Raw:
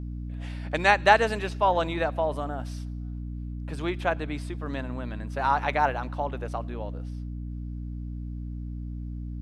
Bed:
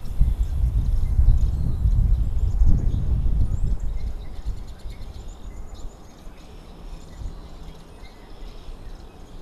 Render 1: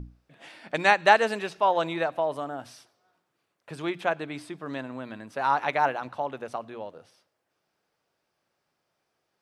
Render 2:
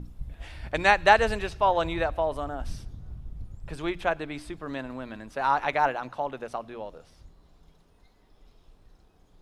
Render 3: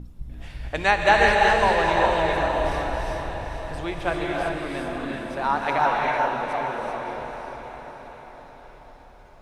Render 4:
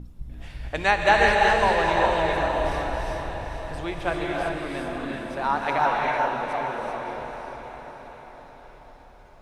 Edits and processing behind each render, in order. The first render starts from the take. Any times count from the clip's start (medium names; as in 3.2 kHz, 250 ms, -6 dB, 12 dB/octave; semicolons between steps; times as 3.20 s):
hum notches 60/120/180/240/300 Hz
add bed -18.5 dB
on a send: echo that smears into a reverb 476 ms, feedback 58%, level -7 dB; on the sum: gated-style reverb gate 420 ms rising, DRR -1.5 dB
trim -1 dB